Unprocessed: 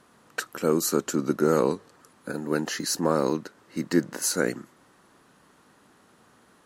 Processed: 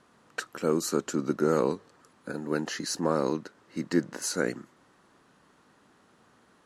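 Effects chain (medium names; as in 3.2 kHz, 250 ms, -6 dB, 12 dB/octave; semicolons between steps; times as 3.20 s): Bessel low-pass 7.9 kHz, order 2; trim -3 dB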